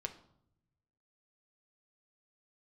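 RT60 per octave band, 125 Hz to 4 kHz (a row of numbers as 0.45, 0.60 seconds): 1.6, 1.2, 0.75, 0.70, 0.50, 0.50 seconds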